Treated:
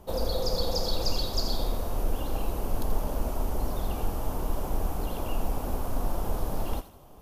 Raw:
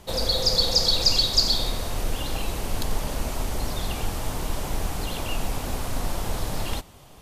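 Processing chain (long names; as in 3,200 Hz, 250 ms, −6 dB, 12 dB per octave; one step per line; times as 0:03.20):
octave-band graphic EQ 125/2,000/4,000/8,000 Hz −6/−11/−10/−11 dB
on a send: feedback echo with a high-pass in the loop 82 ms, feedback 40%, high-pass 1,100 Hz, level −11 dB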